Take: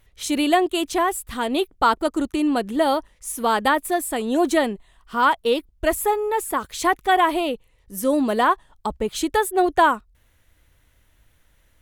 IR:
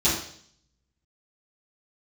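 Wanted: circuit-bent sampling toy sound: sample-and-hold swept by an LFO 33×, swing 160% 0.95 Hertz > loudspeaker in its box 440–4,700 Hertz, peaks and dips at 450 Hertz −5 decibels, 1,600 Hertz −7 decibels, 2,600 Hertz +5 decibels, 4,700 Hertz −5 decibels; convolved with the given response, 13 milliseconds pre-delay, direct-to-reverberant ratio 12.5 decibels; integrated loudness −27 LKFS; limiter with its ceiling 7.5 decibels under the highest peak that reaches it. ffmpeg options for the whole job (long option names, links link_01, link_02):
-filter_complex "[0:a]alimiter=limit=-12dB:level=0:latency=1,asplit=2[link_01][link_02];[1:a]atrim=start_sample=2205,adelay=13[link_03];[link_02][link_03]afir=irnorm=-1:irlink=0,volume=-27dB[link_04];[link_01][link_04]amix=inputs=2:normalize=0,acrusher=samples=33:mix=1:aa=0.000001:lfo=1:lforange=52.8:lforate=0.95,highpass=440,equalizer=frequency=450:width_type=q:width=4:gain=-5,equalizer=frequency=1600:width_type=q:width=4:gain=-7,equalizer=frequency=2600:width_type=q:width=4:gain=5,equalizer=frequency=4700:width_type=q:width=4:gain=-5,lowpass=frequency=4700:width=0.5412,lowpass=frequency=4700:width=1.3066,volume=-0.5dB"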